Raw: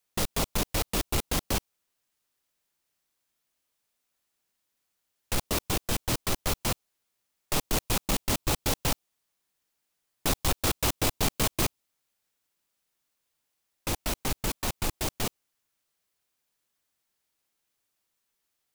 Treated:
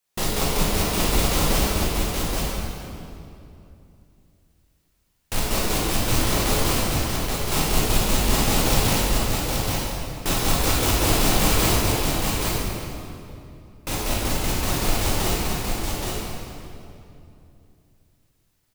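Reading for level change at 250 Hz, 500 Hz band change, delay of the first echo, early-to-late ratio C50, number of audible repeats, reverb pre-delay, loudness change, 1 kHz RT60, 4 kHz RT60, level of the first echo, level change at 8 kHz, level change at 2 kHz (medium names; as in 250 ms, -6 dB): +9.5 dB, +9.0 dB, 825 ms, -5.0 dB, 1, 13 ms, +7.0 dB, 2.5 s, 1.9 s, -3.5 dB, +7.5 dB, +8.5 dB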